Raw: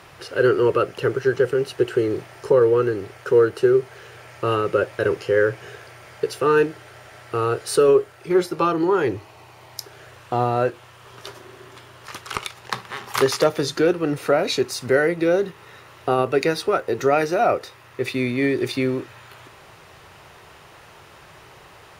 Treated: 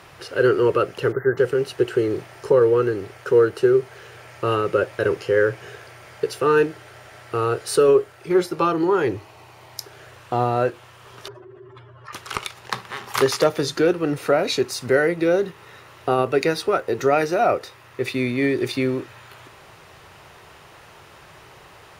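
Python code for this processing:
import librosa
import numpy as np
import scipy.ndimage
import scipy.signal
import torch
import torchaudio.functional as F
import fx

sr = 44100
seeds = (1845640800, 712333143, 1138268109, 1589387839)

y = fx.spec_erase(x, sr, start_s=1.12, length_s=0.25, low_hz=2100.0, high_hz=12000.0)
y = fx.spec_expand(y, sr, power=2.3, at=(11.28, 12.13))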